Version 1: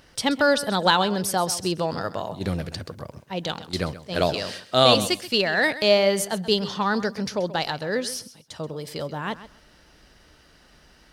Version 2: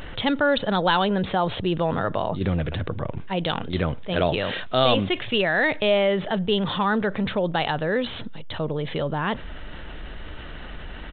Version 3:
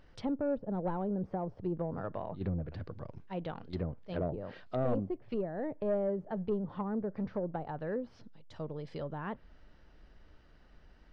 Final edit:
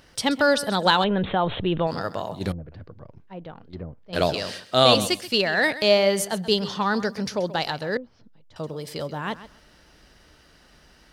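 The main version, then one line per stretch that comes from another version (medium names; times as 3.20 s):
1
1.04–1.87 s: from 2
2.52–4.13 s: from 3
7.97–8.56 s: from 3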